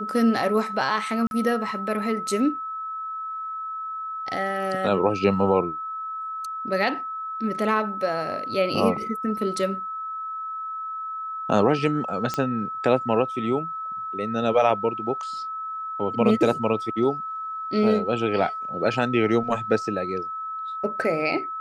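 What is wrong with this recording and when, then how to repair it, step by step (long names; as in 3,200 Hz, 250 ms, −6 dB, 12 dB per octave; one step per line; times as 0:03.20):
whistle 1,300 Hz −29 dBFS
0:01.27–0:01.31: drop-out 41 ms
0:12.34: click −12 dBFS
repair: click removal
notch filter 1,300 Hz, Q 30
repair the gap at 0:01.27, 41 ms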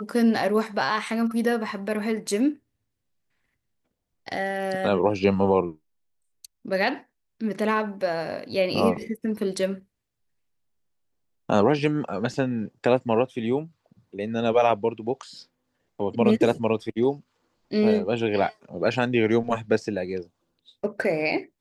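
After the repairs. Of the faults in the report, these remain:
none of them is left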